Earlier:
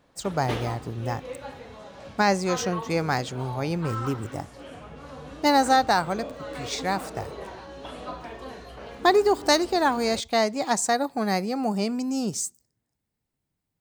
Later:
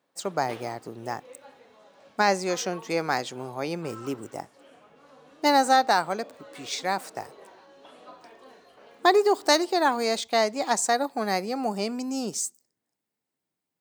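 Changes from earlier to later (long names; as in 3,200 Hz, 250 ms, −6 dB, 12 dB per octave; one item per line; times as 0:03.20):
background −10.5 dB
master: add high-pass filter 270 Hz 12 dB per octave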